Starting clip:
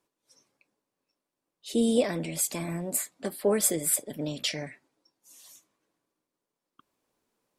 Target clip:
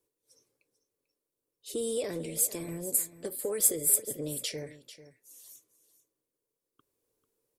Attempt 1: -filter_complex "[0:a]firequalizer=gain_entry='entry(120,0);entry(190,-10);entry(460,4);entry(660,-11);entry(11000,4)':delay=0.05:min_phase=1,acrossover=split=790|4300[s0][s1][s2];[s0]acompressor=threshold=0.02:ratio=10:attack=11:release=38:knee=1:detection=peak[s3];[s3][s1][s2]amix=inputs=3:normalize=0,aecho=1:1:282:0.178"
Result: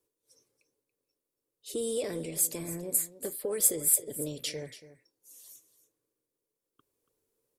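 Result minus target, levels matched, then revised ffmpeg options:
echo 161 ms early
-filter_complex "[0:a]firequalizer=gain_entry='entry(120,0);entry(190,-10);entry(460,4);entry(660,-11);entry(11000,4)':delay=0.05:min_phase=1,acrossover=split=790|4300[s0][s1][s2];[s0]acompressor=threshold=0.02:ratio=10:attack=11:release=38:knee=1:detection=peak[s3];[s3][s1][s2]amix=inputs=3:normalize=0,aecho=1:1:443:0.178"

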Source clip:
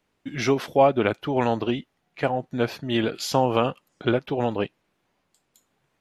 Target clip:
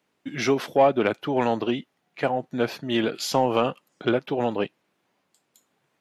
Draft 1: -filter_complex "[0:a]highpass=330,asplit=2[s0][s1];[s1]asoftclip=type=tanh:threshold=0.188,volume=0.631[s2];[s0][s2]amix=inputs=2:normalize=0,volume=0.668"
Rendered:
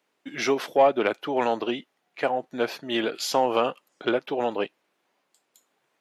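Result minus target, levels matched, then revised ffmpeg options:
125 Hz band -10.5 dB
-filter_complex "[0:a]highpass=150,asplit=2[s0][s1];[s1]asoftclip=type=tanh:threshold=0.188,volume=0.631[s2];[s0][s2]amix=inputs=2:normalize=0,volume=0.668"

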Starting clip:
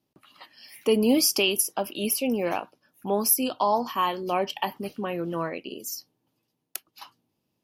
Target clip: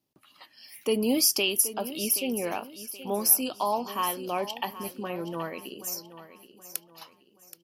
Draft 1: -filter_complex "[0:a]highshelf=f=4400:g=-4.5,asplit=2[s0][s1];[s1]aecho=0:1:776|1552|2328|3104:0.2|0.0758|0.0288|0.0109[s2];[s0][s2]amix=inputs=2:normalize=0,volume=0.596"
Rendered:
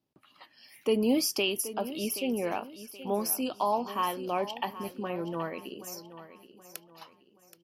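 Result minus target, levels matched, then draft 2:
8 kHz band -5.5 dB
-filter_complex "[0:a]highshelf=f=4400:g=6.5,asplit=2[s0][s1];[s1]aecho=0:1:776|1552|2328|3104:0.2|0.0758|0.0288|0.0109[s2];[s0][s2]amix=inputs=2:normalize=0,volume=0.596"

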